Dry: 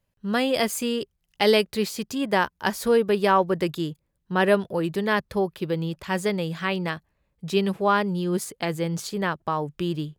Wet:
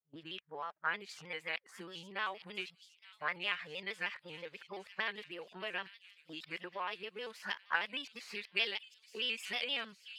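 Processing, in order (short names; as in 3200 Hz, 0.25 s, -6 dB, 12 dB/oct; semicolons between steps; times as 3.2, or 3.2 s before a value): whole clip reversed; spectral noise reduction 7 dB; gate with hold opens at -33 dBFS; harmonic-percussive split percussive -9 dB; compressor 6:1, threshold -27 dBFS, peak gain reduction 12 dB; auto-wah 750–2600 Hz, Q 2.8, up, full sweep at -28.5 dBFS; thin delay 0.866 s, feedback 64%, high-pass 4200 Hz, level -7.5 dB; shaped vibrato square 6.4 Hz, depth 100 cents; gain +7.5 dB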